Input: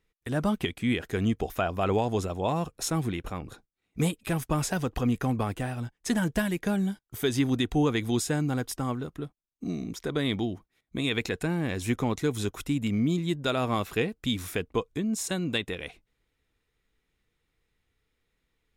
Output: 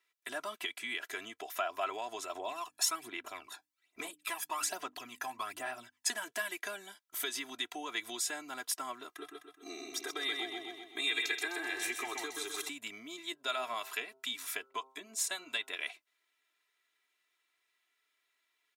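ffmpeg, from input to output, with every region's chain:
-filter_complex "[0:a]asettb=1/sr,asplit=3[s0][s1][s2];[s0]atrim=end=2.354[s3];[s1]atrim=start=2.35:end=6.1,asetpts=PTS-STARTPTS,afade=t=in:d=0.004:c=qsin,afade=t=out:st=3.746:d=0.004:c=qsin,bandreject=f=50:t=h:w=6,bandreject=f=100:t=h:w=6,bandreject=f=150:t=h:w=6,bandreject=f=200:t=h:w=6,bandreject=f=250:t=h:w=6,bandreject=f=300:t=h:w=6,aphaser=in_gain=1:out_gain=1:delay=1.2:decay=0.62:speed=1.2:type=sinusoidal[s4];[s2]atrim=start=6.096[s5];[s3][s4]acrossfade=d=0.004:c1=hsin:c2=qsin[s6];[s6][s5]acrossfade=d=0.004:c1=qsin:c2=hsin,asettb=1/sr,asplit=3[s7][s8][s9];[s7]atrim=end=9.094[s10];[s8]atrim=start=9.09:end=12.69,asetpts=PTS-STARTPTS,afade=t=in:d=0.004:c=qsin,afade=t=out:st=3.596:d=0.004:c=qsin,aecho=1:1:2.5:0.9,atrim=end_sample=158760,aecho=1:1:128|256|384|512|640|768:0.631|0.297|0.139|0.0655|0.0308|0.0145,atrim=end_sample=158760[s11];[s9]atrim=start=12.686[s12];[s10][s11]acrossfade=d=0.004:c1=hsin:c2=qsin[s13];[s13][s12]acrossfade=d=0.004:c1=qsin:c2=hsin,asettb=1/sr,asplit=3[s14][s15][s16];[s14]atrim=end=13.324[s17];[s15]atrim=start=13.32:end=15.73,asetpts=PTS-STARTPTS,afade=t=in:d=0.004:c=qsin,afade=t=out:st=2.406:d=0.004:c=qsin,bandreject=f=132:t=h:w=4,bandreject=f=264:t=h:w=4,bandreject=f=396:t=h:w=4,bandreject=f=528:t=h:w=4,bandreject=f=660:t=h:w=4,bandreject=f=792:t=h:w=4,bandreject=f=924:t=h:w=4,bandreject=f=1056:t=h:w=4,bandreject=f=1188:t=h:w=4,bandreject=f=1320:t=h:w=4,bandreject=f=1452:t=h:w=4,acrossover=split=910[s18][s19];[s18]aeval=exprs='val(0)*(1-0.5/2+0.5/2*cos(2*PI*7.1*n/s))':c=same[s20];[s19]aeval=exprs='val(0)*(1-0.5/2-0.5/2*cos(2*PI*7.1*n/s))':c=same[s21];[s20][s21]amix=inputs=2:normalize=0,bandreject=f=340:w=6[s22];[s16]atrim=start=15.726[s23];[s17][s22]acrossfade=d=0.004:c1=hsin:c2=qsin[s24];[s24][s23]acrossfade=d=0.004:c1=qsin:c2=hsin,acompressor=threshold=0.0355:ratio=4,highpass=930,aecho=1:1:3:0.88"

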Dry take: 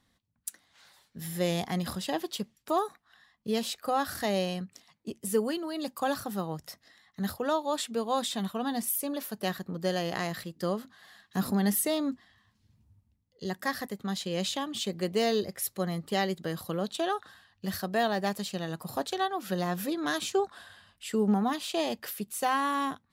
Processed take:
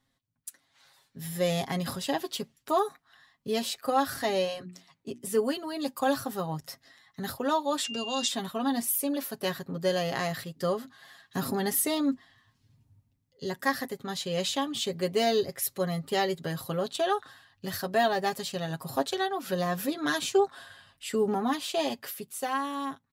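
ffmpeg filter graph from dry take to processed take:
-filter_complex "[0:a]asettb=1/sr,asplit=3[s0][s1][s2];[s0]atrim=end=4.154[s3];[s1]atrim=start=4.15:end=5.44,asetpts=PTS-STARTPTS,afade=t=in:d=0.004:c=qsin,afade=t=out:st=1.286:d=0.004:c=qsin,highshelf=f=8700:g=-5.5,bandreject=f=60:t=h:w=6,bandreject=f=120:t=h:w=6,bandreject=f=180:t=h:w=6,bandreject=f=240:t=h:w=6,bandreject=f=300:t=h:w=6,bandreject=f=360:t=h:w=6[s4];[s2]atrim=start=5.436[s5];[s3][s4]acrossfade=d=0.004:c1=hsin:c2=qsin[s6];[s6][s5]acrossfade=d=0.004:c1=qsin:c2=hsin,asettb=1/sr,asplit=3[s7][s8][s9];[s7]atrim=end=7.844[s10];[s8]atrim=start=7.84:end=8.28,asetpts=PTS-STARTPTS,afade=t=in:d=0.004:c=qsin,afade=t=out:st=0.436:d=0.004:c=qsin,lowpass=f=6300:t=q:w=3.2,acrossover=split=270|3000[s11][s12][s13];[s12]acompressor=threshold=0.0158:ratio=2.5:attack=3.2:release=140:knee=2.83:detection=peak[s14];[s11][s14][s13]amix=inputs=3:normalize=0,aeval=exprs='val(0)+0.0158*sin(2*PI*2800*n/s)':c=same[s15];[s9]atrim=start=8.276[s16];[s10][s15]acrossfade=d=0.004:c1=hsin:c2=qsin[s17];[s17][s16]acrossfade=d=0.004:c1=qsin:c2=hsin,aecho=1:1:7.4:0.69,dynaudnorm=f=110:g=21:m=2.11,volume=0.501"

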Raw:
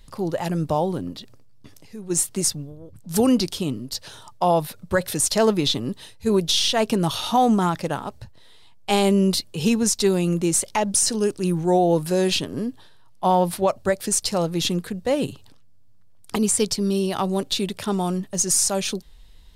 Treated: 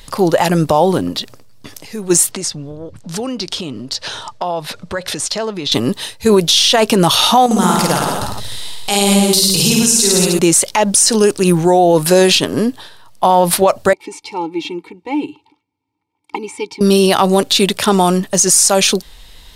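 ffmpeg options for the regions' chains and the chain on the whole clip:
-filter_complex "[0:a]asettb=1/sr,asplit=3[s0][s1][s2];[s0]atrim=end=2.314[s3];[s1]atrim=start=2.31:end=5.72,asetpts=PTS-STARTPTS,afade=t=in:d=0.004:c=qsin,afade=t=out:st=3.406:d=0.004:c=qsin,lowpass=5900,acompressor=threshold=0.0178:ratio=4:attack=3.2:release=140:knee=1:detection=peak[s4];[s2]atrim=start=5.716[s5];[s3][s4]acrossfade=d=0.004:c1=hsin:c2=qsin[s6];[s6][s5]acrossfade=d=0.004:c1=qsin:c2=hsin,asettb=1/sr,asplit=3[s7][s8][s9];[s7]atrim=end=7.464[s10];[s8]atrim=start=7.46:end=10.39,asetpts=PTS-STARTPTS,afade=t=in:d=0.004:c=qsin,afade=t=out:st=2.926:d=0.004:c=qsin,bass=f=250:g=6,treble=f=4000:g=11,acompressor=threshold=0.02:ratio=2:attack=3.2:release=140:knee=1:detection=peak,aecho=1:1:50|105|165.5|232|305.3:0.794|0.631|0.501|0.398|0.316,atrim=end_sample=129213[s11];[s9]atrim=start=10.386[s12];[s10][s11]acrossfade=d=0.004:c1=hsin:c2=qsin[s13];[s13][s12]acrossfade=d=0.004:c1=qsin:c2=hsin,asettb=1/sr,asplit=3[s14][s15][s16];[s14]atrim=end=13.934[s17];[s15]atrim=start=13.93:end=16.81,asetpts=PTS-STARTPTS,afade=t=in:d=0.004:c=qsin,afade=t=out:st=2.876:d=0.004:c=qsin,asplit=3[s18][s19][s20];[s18]bandpass=f=300:t=q:w=8,volume=1[s21];[s19]bandpass=f=870:t=q:w=8,volume=0.501[s22];[s20]bandpass=f=2240:t=q:w=8,volume=0.355[s23];[s21][s22][s23]amix=inputs=3:normalize=0,aecho=1:1:2.2:0.67,atrim=end_sample=127008[s24];[s16]atrim=start=16.806[s25];[s17][s24]acrossfade=d=0.004:c1=hsin:c2=qsin[s26];[s26][s25]acrossfade=d=0.004:c1=qsin:c2=hsin,lowshelf=f=310:g=-10.5,alimiter=level_in=8.41:limit=0.891:release=50:level=0:latency=1,volume=0.891"

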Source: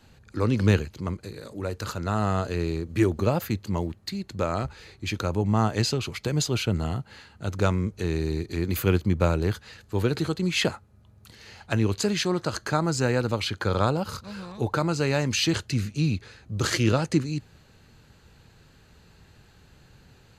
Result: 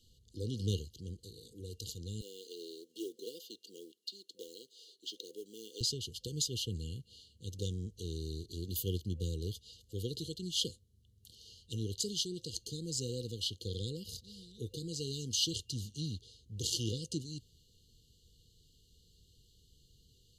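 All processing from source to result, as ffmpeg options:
-filter_complex "[0:a]asettb=1/sr,asplit=3[s0][s1][s2];[s0]atrim=end=2.214[s3];[s1]atrim=start=2.21:end=5.81,asetpts=PTS-STARTPTS,afade=t=in:d=0.004:c=qsin,afade=t=out:st=3.596:d=0.004:c=qsin,highpass=f=350:w=0.5412,highpass=f=350:w=1.3066,acrossover=split=5600[s4][s5];[s5]acompressor=threshold=0.00178:ratio=4:attack=1:release=60[s6];[s4][s6]amix=inputs=2:normalize=0,acrusher=bits=7:mode=log:mix=0:aa=0.000001[s7];[s2]atrim=start=5.806[s8];[s3][s7]acrossfade=d=0.004:c1=hsin:c2=qsin[s9];[s9][s8]acrossfade=d=0.004:c1=qsin:c2=hsin,afftfilt=real='re*(1-between(b*sr/4096,510,2800))':imag='im*(1-between(b*sr/4096,510,2800))':win_size=4096:overlap=0.75,equalizer=f=250:w=0.32:g=-12,volume=0.596"

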